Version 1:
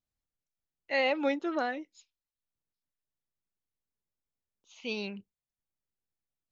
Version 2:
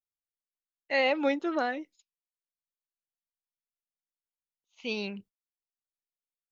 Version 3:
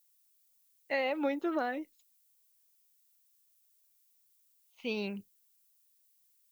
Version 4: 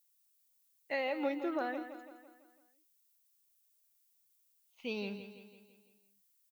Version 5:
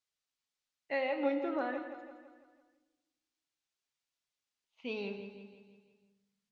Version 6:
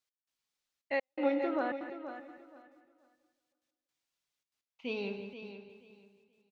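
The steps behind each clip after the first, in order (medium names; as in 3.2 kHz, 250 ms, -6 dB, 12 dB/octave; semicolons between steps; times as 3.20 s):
gate -54 dBFS, range -22 dB; trim +2 dB
compression, threshold -27 dBFS, peak gain reduction 6 dB; treble shelf 3.5 kHz -8.5 dB; added noise violet -70 dBFS
feedback delay 167 ms, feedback 53%, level -11 dB; trim -3.5 dB
Chebyshev shaper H 7 -40 dB, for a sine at -22.5 dBFS; Gaussian low-pass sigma 1.6 samples; reverberation RT60 1.2 s, pre-delay 7 ms, DRR 6.5 dB
trance gate "x..xxxxxx." 166 bpm -60 dB; feedback delay 478 ms, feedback 21%, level -11 dB; trim +2 dB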